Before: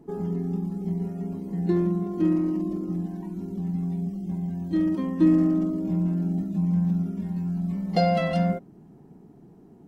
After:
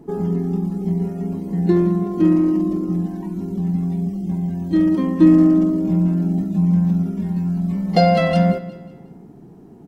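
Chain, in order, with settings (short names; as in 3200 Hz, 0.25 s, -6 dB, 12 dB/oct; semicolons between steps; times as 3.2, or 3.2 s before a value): feedback echo 0.181 s, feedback 42%, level -17 dB; gain +7.5 dB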